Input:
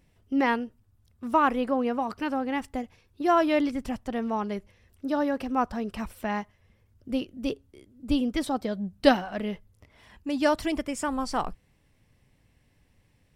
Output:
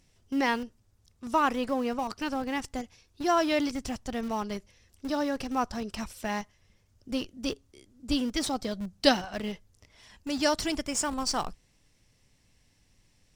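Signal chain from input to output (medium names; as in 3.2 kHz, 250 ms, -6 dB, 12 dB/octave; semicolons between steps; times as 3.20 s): peaking EQ 6 kHz +15 dB 1.6 oct; in parallel at -11 dB: Schmitt trigger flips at -27.5 dBFS; on the sum: added noise brown -64 dBFS; trim -4.5 dB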